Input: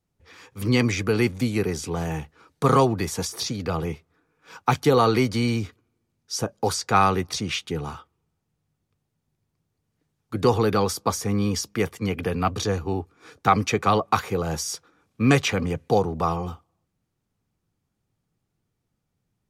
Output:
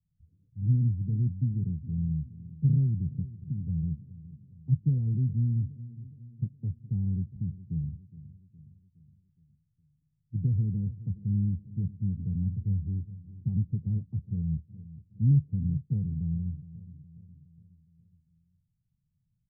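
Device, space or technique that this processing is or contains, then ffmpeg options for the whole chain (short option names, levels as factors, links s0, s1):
the neighbour's flat through the wall: -filter_complex "[0:a]lowpass=f=160:w=0.5412,lowpass=f=160:w=1.3066,equalizer=f=160:t=o:w=0.77:g=4,asplit=2[s0][s1];[s1]adelay=415,lowpass=f=2000:p=1,volume=0.15,asplit=2[s2][s3];[s3]adelay=415,lowpass=f=2000:p=1,volume=0.53,asplit=2[s4][s5];[s5]adelay=415,lowpass=f=2000:p=1,volume=0.53,asplit=2[s6][s7];[s7]adelay=415,lowpass=f=2000:p=1,volume=0.53,asplit=2[s8][s9];[s9]adelay=415,lowpass=f=2000:p=1,volume=0.53[s10];[s0][s2][s4][s6][s8][s10]amix=inputs=6:normalize=0"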